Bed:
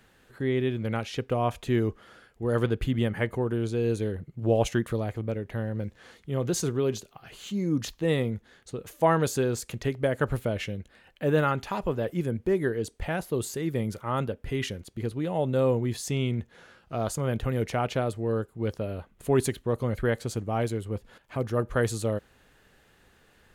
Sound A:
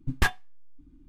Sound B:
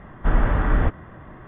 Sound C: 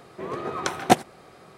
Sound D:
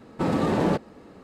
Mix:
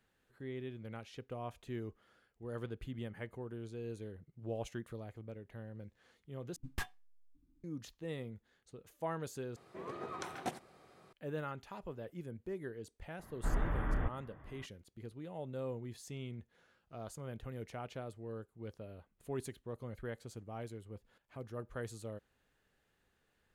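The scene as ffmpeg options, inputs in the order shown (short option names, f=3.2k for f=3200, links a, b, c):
-filter_complex "[0:a]volume=-17dB[a];[1:a]highshelf=f=5.7k:g=6.5[b];[3:a]alimiter=limit=-15.5dB:level=0:latency=1:release=37[c];[a]asplit=3[d][e][f];[d]atrim=end=6.564[g];[b]atrim=end=1.08,asetpts=PTS-STARTPTS,volume=-17dB[h];[e]atrim=start=7.636:end=9.564[i];[c]atrim=end=1.57,asetpts=PTS-STARTPTS,volume=-12.5dB[j];[f]atrim=start=11.126[k];[2:a]atrim=end=1.47,asetpts=PTS-STARTPTS,volume=-15dB,afade=t=in:d=0.004:c=hsin,afade=t=out:st=1.466:d=0.004:c=hsin,adelay=13190[l];[g][h]acrossfade=d=0.004:c1=hsin:c2=hsin[m];[m][i]acrossfade=d=0.004:c1=hsin:c2=hsin[n];[n][j]acrossfade=d=0.004:c1=hsin:c2=hsin[o];[o][k]acrossfade=d=0.004:c1=hsin:c2=hsin[p];[p][l]amix=inputs=2:normalize=0"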